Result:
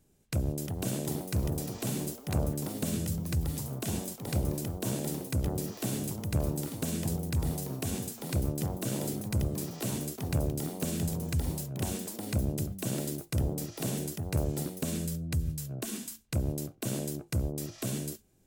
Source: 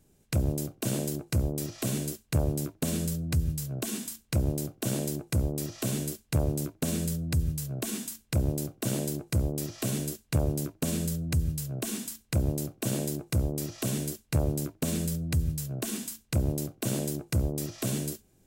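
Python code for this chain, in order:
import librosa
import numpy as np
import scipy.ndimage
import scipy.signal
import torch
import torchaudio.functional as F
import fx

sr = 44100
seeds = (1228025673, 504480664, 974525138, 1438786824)

y = fx.echo_pitch(x, sr, ms=422, semitones=4, count=3, db_per_echo=-6.0)
y = y * 10.0 ** (-3.5 / 20.0)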